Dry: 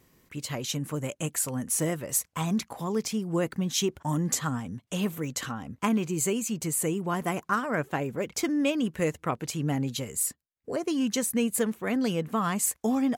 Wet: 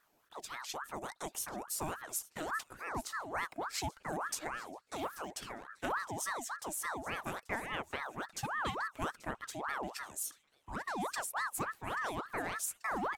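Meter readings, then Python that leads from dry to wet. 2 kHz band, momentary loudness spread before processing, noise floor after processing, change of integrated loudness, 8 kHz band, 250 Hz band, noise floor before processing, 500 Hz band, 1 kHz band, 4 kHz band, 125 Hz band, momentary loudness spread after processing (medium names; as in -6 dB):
-1.5 dB, 6 LU, -72 dBFS, -10.0 dB, -11.5 dB, -19.0 dB, -71 dBFS, -12.5 dB, -3.5 dB, -9.5 dB, -17.5 dB, 7 LU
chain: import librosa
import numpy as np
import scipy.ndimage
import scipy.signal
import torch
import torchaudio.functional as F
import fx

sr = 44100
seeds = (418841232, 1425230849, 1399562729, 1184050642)

y = fx.echo_wet_highpass(x, sr, ms=835, feedback_pct=48, hz=1600.0, wet_db=-18.0)
y = fx.ring_lfo(y, sr, carrier_hz=1000.0, swing_pct=55, hz=3.5)
y = y * librosa.db_to_amplitude(-8.0)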